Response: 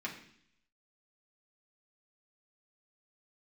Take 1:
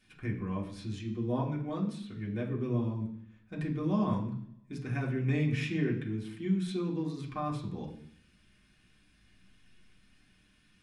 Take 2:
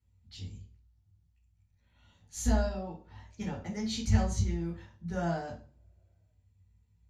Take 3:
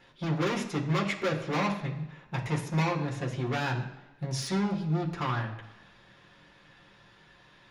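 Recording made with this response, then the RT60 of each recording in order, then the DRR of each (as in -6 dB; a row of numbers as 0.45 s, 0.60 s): 1; 0.65 s, 0.40 s, 1.0 s; -4.0 dB, -3.0 dB, -2.5 dB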